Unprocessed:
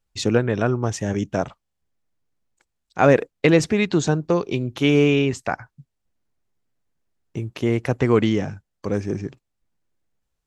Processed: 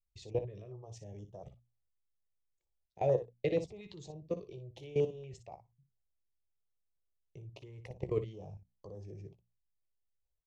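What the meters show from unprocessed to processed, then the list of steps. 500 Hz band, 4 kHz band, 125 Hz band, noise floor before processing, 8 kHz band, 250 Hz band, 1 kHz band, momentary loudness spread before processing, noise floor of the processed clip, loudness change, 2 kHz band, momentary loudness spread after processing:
-15.0 dB, -25.0 dB, -18.5 dB, -78 dBFS, under -25 dB, -25.0 dB, -19.5 dB, 15 LU, -82 dBFS, -17.0 dB, -28.0 dB, 19 LU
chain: low-pass 8.3 kHz; bass shelf 180 Hz +4 dB; static phaser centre 610 Hz, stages 4; level held to a coarse grid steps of 19 dB; treble shelf 3.1 kHz -10.5 dB; hum notches 60/120/180/240 Hz; early reflections 16 ms -10.5 dB, 59 ms -11 dB; step-sequenced notch 4.2 Hz 690–2300 Hz; trim -8.5 dB

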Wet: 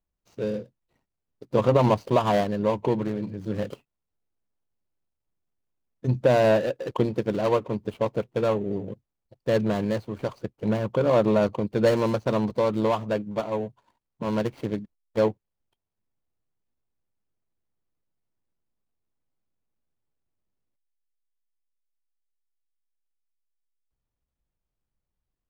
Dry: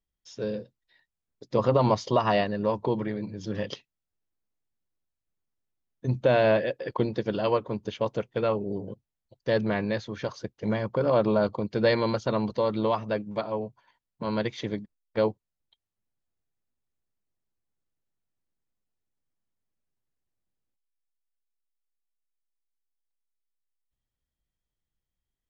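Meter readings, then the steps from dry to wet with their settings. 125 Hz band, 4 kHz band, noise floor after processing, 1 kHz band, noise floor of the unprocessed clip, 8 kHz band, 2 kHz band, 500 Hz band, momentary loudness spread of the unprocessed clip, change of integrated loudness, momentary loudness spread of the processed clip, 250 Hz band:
+3.0 dB, -1.5 dB, -84 dBFS, +1.0 dB, under -85 dBFS, no reading, -1.5 dB, +2.5 dB, 12 LU, +2.0 dB, 12 LU, +3.0 dB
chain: median filter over 25 samples; trim +3 dB

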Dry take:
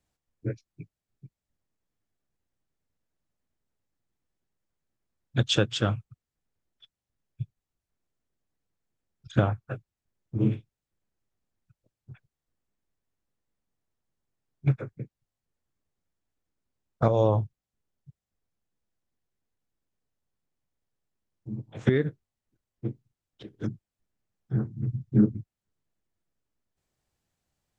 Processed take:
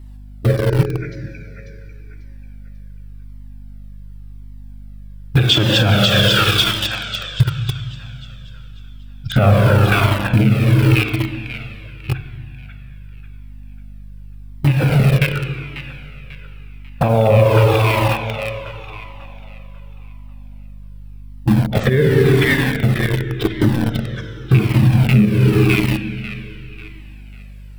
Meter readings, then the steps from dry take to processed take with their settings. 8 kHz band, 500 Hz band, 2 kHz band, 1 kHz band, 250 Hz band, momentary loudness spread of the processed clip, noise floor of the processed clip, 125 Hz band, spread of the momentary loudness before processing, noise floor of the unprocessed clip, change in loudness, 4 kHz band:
no reading, +14.0 dB, +21.5 dB, +16.5 dB, +13.5 dB, 19 LU, -35 dBFS, +17.0 dB, 17 LU, under -85 dBFS, +13.0 dB, +19.0 dB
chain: rattle on loud lows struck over -22 dBFS, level -25 dBFS; on a send: feedback echo behind a high-pass 543 ms, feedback 37%, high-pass 1.6 kHz, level -4 dB; on the sum: Schroeder reverb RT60 2.4 s, combs from 31 ms, DRR 3.5 dB; hum 50 Hz, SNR 29 dB; in parallel at -7 dB: bit crusher 6-bit; on the sum: compression 6:1, threshold -29 dBFS, peak gain reduction 16.5 dB; peaking EQ 6.6 kHz -10.5 dB 0.49 oct; loudness maximiser +25 dB; Shepard-style flanger falling 0.89 Hz; trim +1.5 dB

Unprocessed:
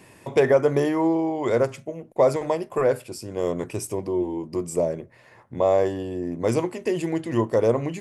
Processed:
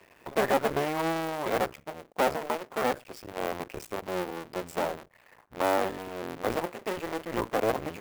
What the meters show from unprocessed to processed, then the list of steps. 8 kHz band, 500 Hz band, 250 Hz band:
-5.0 dB, -9.0 dB, -9.5 dB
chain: cycle switcher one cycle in 2, muted; overdrive pedal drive 9 dB, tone 2.8 kHz, clips at -6.5 dBFS; sampling jitter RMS 0.02 ms; trim -5 dB

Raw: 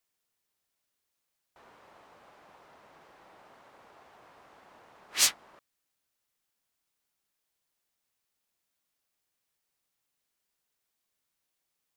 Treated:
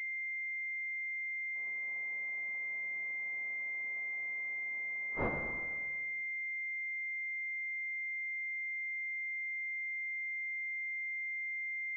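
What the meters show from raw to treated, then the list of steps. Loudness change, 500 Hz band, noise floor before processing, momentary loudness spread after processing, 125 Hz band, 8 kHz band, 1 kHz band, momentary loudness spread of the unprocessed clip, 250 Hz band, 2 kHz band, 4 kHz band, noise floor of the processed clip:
-10.0 dB, +8.0 dB, -83 dBFS, 0 LU, no reading, under -35 dB, +0.5 dB, 8 LU, +11.5 dB, +15.0 dB, under -35 dB, -39 dBFS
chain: Schroeder reverb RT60 1.6 s, combs from 32 ms, DRR 5 dB; class-D stage that switches slowly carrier 2.1 kHz; trim -5.5 dB

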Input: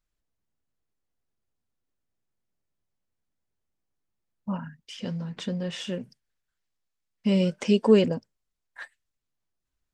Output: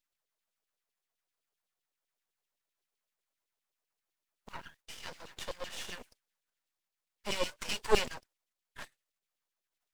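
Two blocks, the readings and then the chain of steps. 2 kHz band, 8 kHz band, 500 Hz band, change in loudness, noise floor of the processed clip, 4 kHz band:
-0.5 dB, +3.0 dB, -11.0 dB, -10.0 dB, under -85 dBFS, -2.5 dB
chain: formants flattened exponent 0.6; LFO high-pass saw down 7.8 Hz 370–3700 Hz; half-wave rectifier; trim -3.5 dB

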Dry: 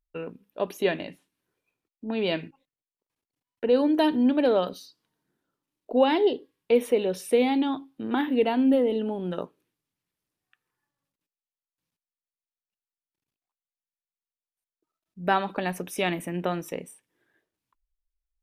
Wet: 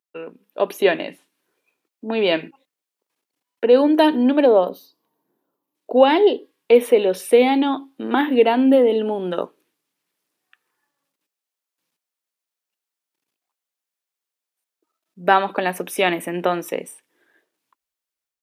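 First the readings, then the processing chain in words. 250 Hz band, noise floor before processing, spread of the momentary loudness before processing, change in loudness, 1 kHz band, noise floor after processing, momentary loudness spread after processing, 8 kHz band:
+5.0 dB, under -85 dBFS, 15 LU, +7.5 dB, +8.5 dB, under -85 dBFS, 14 LU, +6.5 dB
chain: dynamic bell 6 kHz, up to -6 dB, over -50 dBFS, Q 1.1; high-pass 290 Hz 12 dB/octave; time-frequency box 4.45–5.75 s, 1.2–11 kHz -11 dB; level rider gain up to 7.5 dB; trim +2 dB

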